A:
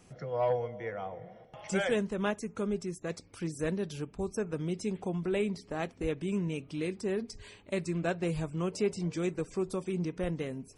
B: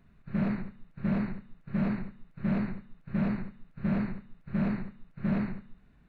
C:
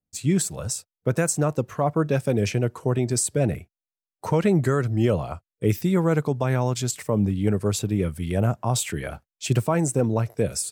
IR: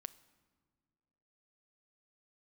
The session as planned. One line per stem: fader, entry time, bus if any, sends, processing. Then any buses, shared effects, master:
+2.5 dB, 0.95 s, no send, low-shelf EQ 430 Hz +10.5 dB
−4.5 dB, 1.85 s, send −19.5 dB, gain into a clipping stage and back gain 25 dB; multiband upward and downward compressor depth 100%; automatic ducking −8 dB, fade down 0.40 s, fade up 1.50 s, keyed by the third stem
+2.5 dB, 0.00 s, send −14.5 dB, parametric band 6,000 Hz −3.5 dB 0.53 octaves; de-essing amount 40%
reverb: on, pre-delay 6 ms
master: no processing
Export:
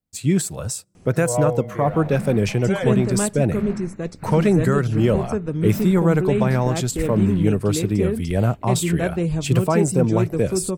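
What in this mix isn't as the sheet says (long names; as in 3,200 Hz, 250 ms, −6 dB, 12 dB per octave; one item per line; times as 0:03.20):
stem B −4.5 dB → +7.0 dB
reverb return −7.0 dB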